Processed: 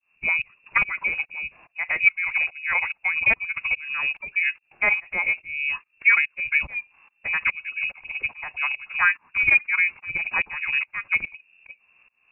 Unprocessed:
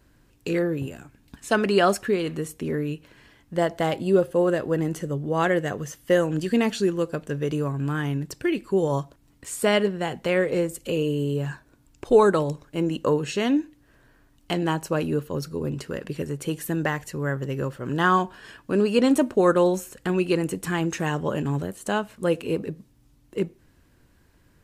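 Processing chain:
voice inversion scrambler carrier 2,700 Hz
shaped tremolo saw up 1.2 Hz, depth 100%
phase-vocoder stretch with locked phases 0.5×
level +4.5 dB

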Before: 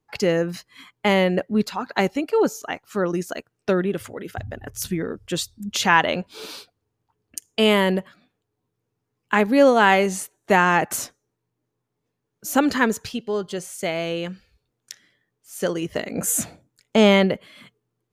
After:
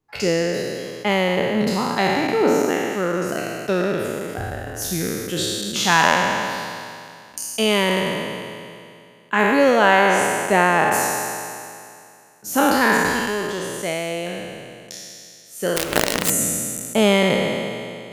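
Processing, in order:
peak hold with a decay on every bin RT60 2.42 s
0:15.76–0:16.30: log-companded quantiser 2 bits
level −2.5 dB

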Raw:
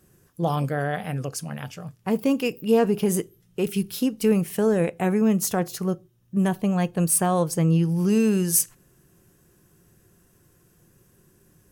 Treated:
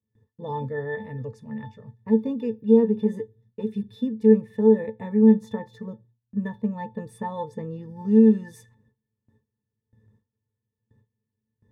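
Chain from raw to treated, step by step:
resonances in every octave A, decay 0.12 s
noise gate with hold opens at −58 dBFS
level +6.5 dB

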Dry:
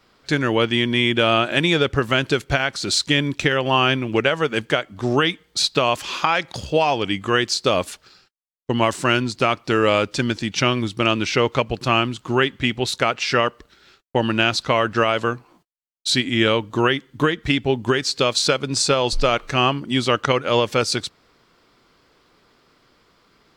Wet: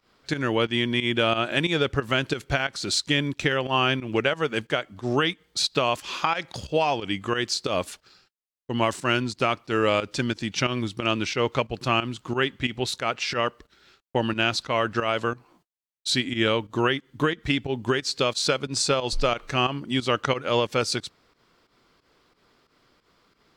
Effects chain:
fake sidechain pumping 90 BPM, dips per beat 2, −13 dB, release 120 ms
level −4.5 dB

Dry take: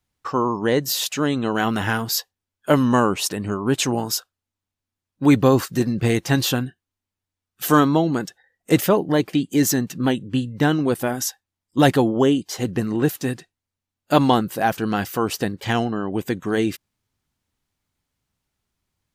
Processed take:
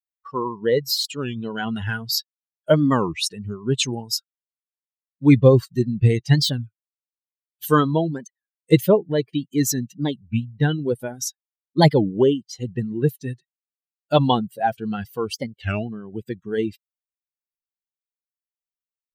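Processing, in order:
spectral dynamics exaggerated over time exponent 2
octave-band graphic EQ 125/500/4,000 Hz +11/+7/+9 dB
wow of a warped record 33 1/3 rpm, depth 250 cents
level −1 dB

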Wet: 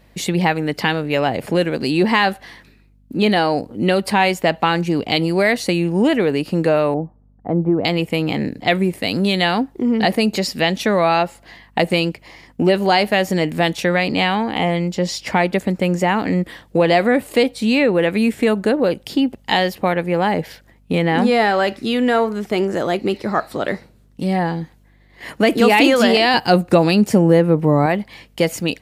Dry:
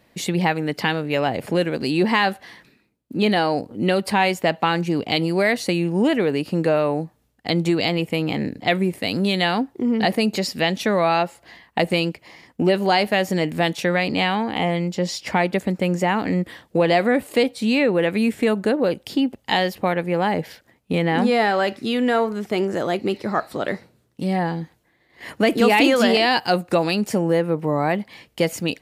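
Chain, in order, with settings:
0:06.94–0:07.85: low-pass filter 1,100 Hz 24 dB per octave
0:26.34–0:27.86: low-shelf EQ 370 Hz +7.5 dB
mains hum 50 Hz, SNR 35 dB
level +3 dB

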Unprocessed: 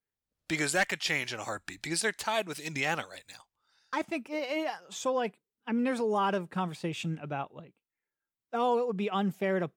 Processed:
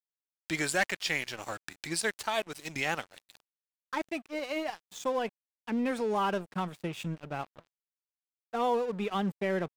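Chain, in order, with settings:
dead-zone distortion −44.5 dBFS

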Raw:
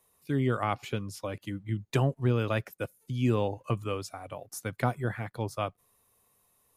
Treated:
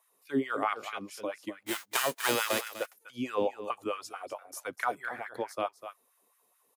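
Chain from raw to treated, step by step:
0:01.66–0:02.70: spectral envelope flattened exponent 0.3
single-tap delay 249 ms −12 dB
auto-filter high-pass sine 4.6 Hz 270–1,600 Hz
level −2.5 dB

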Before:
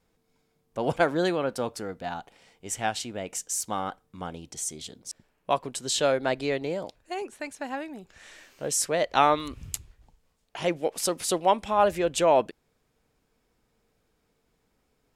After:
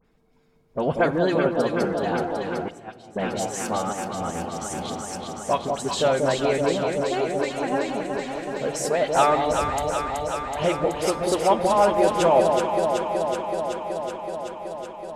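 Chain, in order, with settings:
spectral magnitudes quantised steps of 15 dB
in parallel at +2.5 dB: downward compressor 6 to 1, threshold −31 dBFS, peak gain reduction 14.5 dB
on the sum: delay that swaps between a low-pass and a high-pass 188 ms, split 890 Hz, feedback 88%, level −3.5 dB
0:02.68–0:03.16: noise gate −18 dBFS, range −21 dB
high-shelf EQ 4,300 Hz −11.5 dB
all-pass dispersion highs, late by 46 ms, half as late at 2,500 Hz
on a send at −15 dB: convolution reverb RT60 1.6 s, pre-delay 5 ms
0:03.78–0:04.73: on the sum: transient designer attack −10 dB, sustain −6 dB

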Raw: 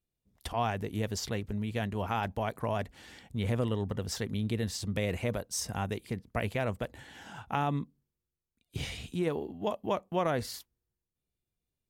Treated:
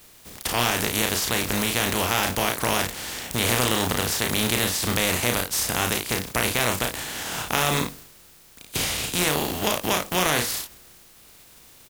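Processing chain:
compressing power law on the bin magnitudes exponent 0.36
ambience of single reflections 33 ms −6 dB, 54 ms −15 dB
envelope flattener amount 50%
level +5.5 dB

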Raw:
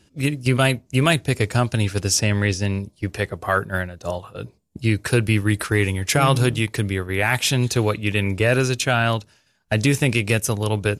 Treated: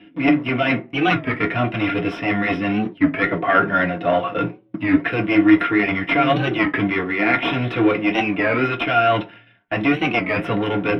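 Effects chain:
flat-topped bell 2,700 Hz +14.5 dB 1.2 octaves
reversed playback
downward compressor 4 to 1, threshold −21 dBFS, peak gain reduction 14.5 dB
reversed playback
asymmetric clip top −25 dBFS
hollow resonant body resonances 320/710/1,400 Hz, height 12 dB, ringing for 65 ms
in parallel at −11 dB: log-companded quantiser 2 bits
on the sum: high-frequency loss of the air 410 metres
convolution reverb RT60 0.30 s, pre-delay 3 ms, DRR 0.5 dB
wow of a warped record 33 1/3 rpm, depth 160 cents

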